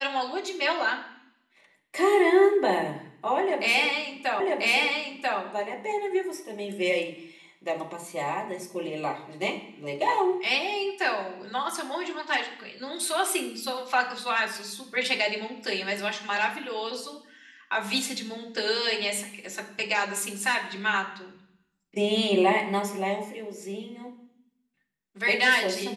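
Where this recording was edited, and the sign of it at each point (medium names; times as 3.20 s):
4.40 s: repeat of the last 0.99 s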